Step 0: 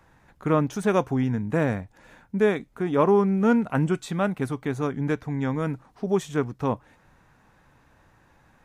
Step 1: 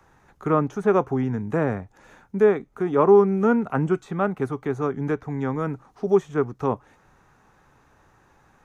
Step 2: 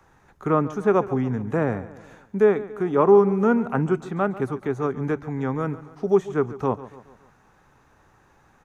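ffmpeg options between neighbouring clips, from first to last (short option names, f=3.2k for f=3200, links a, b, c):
-filter_complex "[0:a]equalizer=f=400:t=o:w=0.33:g=7,equalizer=f=800:t=o:w=0.33:g=4,equalizer=f=1.25k:t=o:w=0.33:g=6,equalizer=f=6.3k:t=o:w=0.33:g=6,acrossover=split=300|820|2300[a][b][c][d];[d]acompressor=threshold=-54dB:ratio=4[e];[a][b][c][e]amix=inputs=4:normalize=0,volume=-1dB"
-af "aecho=1:1:141|282|423|564:0.15|0.0748|0.0374|0.0187"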